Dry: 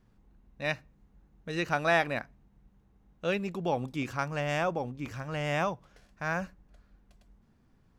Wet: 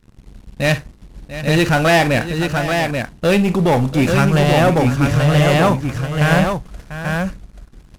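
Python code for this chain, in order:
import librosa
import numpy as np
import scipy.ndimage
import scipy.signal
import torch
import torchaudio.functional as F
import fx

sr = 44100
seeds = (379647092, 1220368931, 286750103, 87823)

y = fx.cvsd(x, sr, bps=64000)
y = fx.low_shelf(y, sr, hz=180.0, db=9.0)
y = fx.leveller(y, sr, passes=3)
y = fx.echo_multitap(y, sr, ms=(44, 59, 692, 834), db=(-14.0, -18.5, -12.5, -5.0))
y = y * librosa.db_to_amplitude(6.5)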